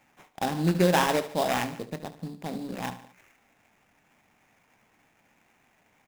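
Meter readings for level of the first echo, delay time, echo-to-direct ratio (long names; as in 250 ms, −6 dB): −14.5 dB, 73 ms, −13.0 dB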